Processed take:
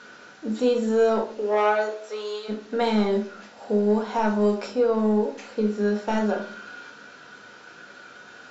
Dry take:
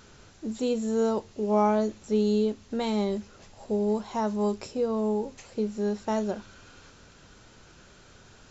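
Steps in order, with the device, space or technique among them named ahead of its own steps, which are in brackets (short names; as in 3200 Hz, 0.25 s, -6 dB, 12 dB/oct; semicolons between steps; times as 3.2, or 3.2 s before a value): intercom (BPF 320–4900 Hz; bell 1500 Hz +9.5 dB 0.31 oct; soft clip -19 dBFS, distortion -17 dB); 1.25–2.48 HPF 270 Hz -> 660 Hz 24 dB/oct; shoebox room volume 340 m³, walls furnished, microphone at 1.8 m; gain +4.5 dB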